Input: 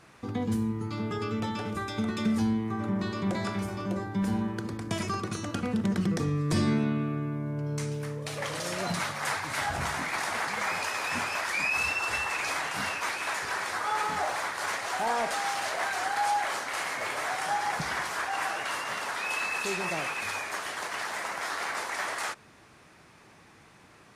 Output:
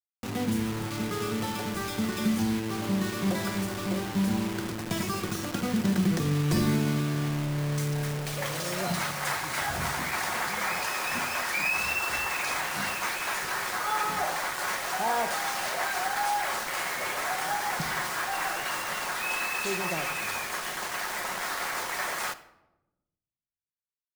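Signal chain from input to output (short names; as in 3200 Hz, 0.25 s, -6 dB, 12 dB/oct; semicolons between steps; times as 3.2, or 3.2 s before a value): bit-crush 6-bit; shoebox room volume 3700 m³, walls furnished, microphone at 0.96 m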